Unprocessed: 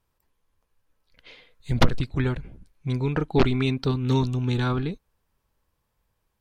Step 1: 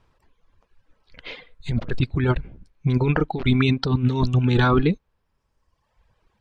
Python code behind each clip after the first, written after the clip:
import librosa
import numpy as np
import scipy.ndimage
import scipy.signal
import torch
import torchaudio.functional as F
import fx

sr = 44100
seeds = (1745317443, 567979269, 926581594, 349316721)

y = fx.dereverb_blind(x, sr, rt60_s=1.2)
y = scipy.signal.sosfilt(scipy.signal.bessel(2, 3600.0, 'lowpass', norm='mag', fs=sr, output='sos'), y)
y = fx.over_compress(y, sr, threshold_db=-29.0, ratio=-1.0)
y = F.gain(torch.from_numpy(y), 9.0).numpy()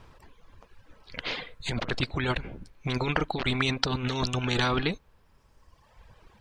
y = fx.spectral_comp(x, sr, ratio=2.0)
y = F.gain(torch.from_numpy(y), -1.5).numpy()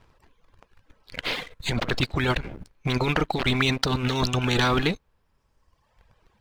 y = fx.leveller(x, sr, passes=2)
y = F.gain(torch.from_numpy(y), -3.0).numpy()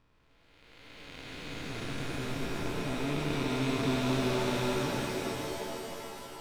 y = fx.spec_blur(x, sr, span_ms=945.0)
y = fx.small_body(y, sr, hz=(290.0, 1400.0, 2500.0), ring_ms=45, db=6)
y = fx.rev_shimmer(y, sr, seeds[0], rt60_s=3.7, semitones=7, shimmer_db=-2, drr_db=2.5)
y = F.gain(torch.from_numpy(y), -7.5).numpy()